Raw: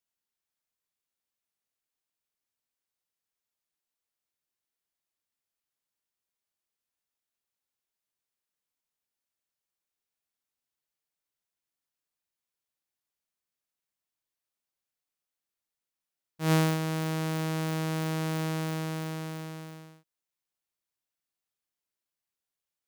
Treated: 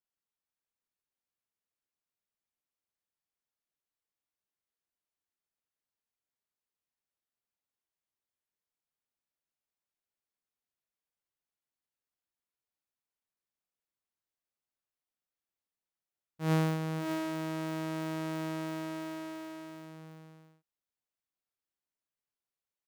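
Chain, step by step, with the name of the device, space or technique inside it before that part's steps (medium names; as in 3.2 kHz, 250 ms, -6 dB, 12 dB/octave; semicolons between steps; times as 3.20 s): behind a face mask (treble shelf 2.6 kHz -7.5 dB); delay 588 ms -6 dB; trim -3.5 dB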